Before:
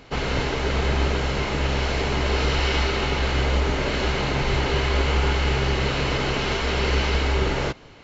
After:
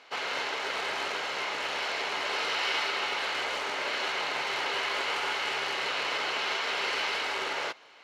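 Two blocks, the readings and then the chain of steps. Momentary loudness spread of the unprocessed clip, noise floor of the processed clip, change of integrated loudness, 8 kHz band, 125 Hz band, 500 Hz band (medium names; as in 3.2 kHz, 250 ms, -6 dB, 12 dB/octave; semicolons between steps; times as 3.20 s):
3 LU, -46 dBFS, -6.5 dB, no reading, under -35 dB, -11.0 dB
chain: short-mantissa float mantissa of 2-bit; band-pass 750–5900 Hz; trim -2.5 dB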